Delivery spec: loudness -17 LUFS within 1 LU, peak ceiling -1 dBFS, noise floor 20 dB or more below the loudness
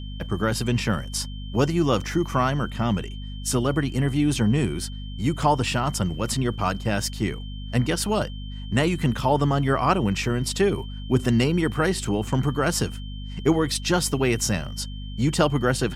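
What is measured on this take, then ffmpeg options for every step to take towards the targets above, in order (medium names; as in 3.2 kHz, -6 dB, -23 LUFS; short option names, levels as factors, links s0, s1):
hum 50 Hz; highest harmonic 250 Hz; hum level -32 dBFS; steady tone 3.1 kHz; tone level -44 dBFS; loudness -24.0 LUFS; peak level -6.5 dBFS; loudness target -17.0 LUFS
-> -af "bandreject=f=50:t=h:w=4,bandreject=f=100:t=h:w=4,bandreject=f=150:t=h:w=4,bandreject=f=200:t=h:w=4,bandreject=f=250:t=h:w=4"
-af "bandreject=f=3100:w=30"
-af "volume=2.24,alimiter=limit=0.891:level=0:latency=1"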